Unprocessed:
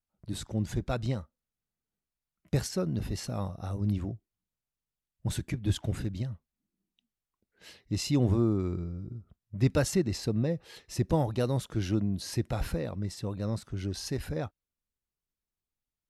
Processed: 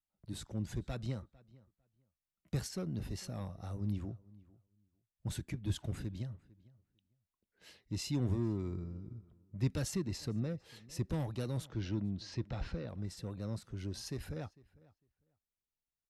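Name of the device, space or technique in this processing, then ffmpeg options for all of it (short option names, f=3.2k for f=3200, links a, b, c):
one-band saturation: -filter_complex "[0:a]acrossover=split=300|2300[a][b][c];[b]asoftclip=type=tanh:threshold=-34.5dB[d];[a][d][c]amix=inputs=3:normalize=0,asettb=1/sr,asplit=3[e][f][g];[e]atrim=end=11.674[h];[f]atrim=start=11.67:end=12.89,asetpts=PTS-STARTPTS,afade=t=in:d=0.004:c=qsin,afade=t=out:st=1.216:d=0.004:c=qsin,lowpass=f=5.5k:w=0.5412,lowpass=f=5.5k:w=1.3066[i];[g]atrim=start=12.886[j];[h][i]acrossfade=d=0.004:c1=hsin:c2=qsin[k];[k][j]acrossfade=d=0.004:c1=qsin:c2=hsin,asplit=2[l][m];[m]adelay=451,lowpass=f=2.9k:p=1,volume=-22.5dB,asplit=2[n][o];[o]adelay=451,lowpass=f=2.9k:p=1,volume=0.16[p];[l][n][p]amix=inputs=3:normalize=0,volume=-7dB"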